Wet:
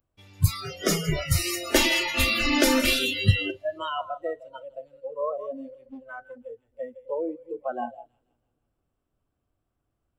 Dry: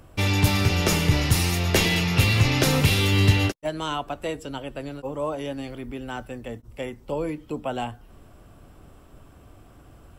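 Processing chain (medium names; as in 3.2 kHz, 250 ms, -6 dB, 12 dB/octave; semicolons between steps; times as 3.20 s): 1.45–2.99 s: comb 3.4 ms, depth 61%; on a send: two-band feedback delay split 480 Hz, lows 258 ms, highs 161 ms, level -9.5 dB; on the sum: spectral noise reduction 30 dB; 5.77–6.38 s: loudspeaker Doppler distortion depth 0.37 ms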